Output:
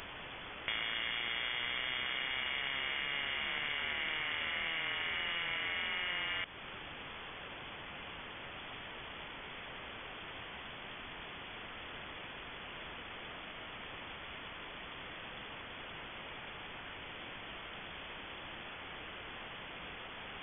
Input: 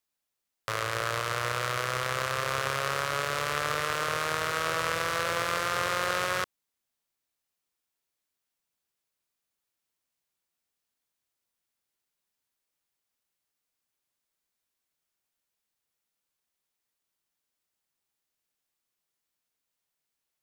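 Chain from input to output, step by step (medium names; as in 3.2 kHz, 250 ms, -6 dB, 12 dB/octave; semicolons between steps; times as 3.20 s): jump at every zero crossing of -29 dBFS; compression, threshold -30 dBFS, peak gain reduction 8 dB; frequency inversion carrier 3.4 kHz; trim -3 dB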